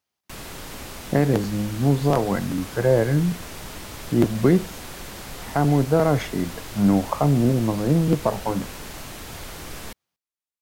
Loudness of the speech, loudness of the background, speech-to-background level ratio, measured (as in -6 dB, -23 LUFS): -22.0 LUFS, -36.5 LUFS, 14.5 dB